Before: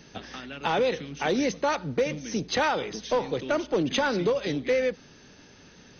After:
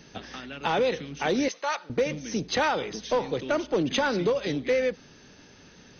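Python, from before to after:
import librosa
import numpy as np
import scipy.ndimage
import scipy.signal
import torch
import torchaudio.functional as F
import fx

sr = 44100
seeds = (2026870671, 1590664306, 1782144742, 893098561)

y = fx.highpass(x, sr, hz=800.0, slope=12, at=(1.48, 1.9))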